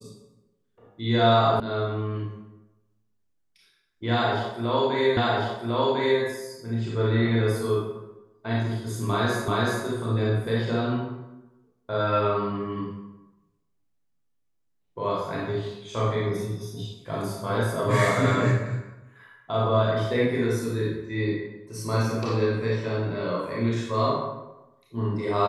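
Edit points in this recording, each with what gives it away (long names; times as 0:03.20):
0:01.60: cut off before it has died away
0:05.17: the same again, the last 1.05 s
0:09.48: the same again, the last 0.38 s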